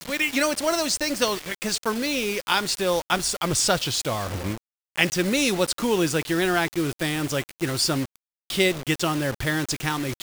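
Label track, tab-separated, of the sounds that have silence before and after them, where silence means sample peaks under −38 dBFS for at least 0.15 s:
4.960000	8.160000	sound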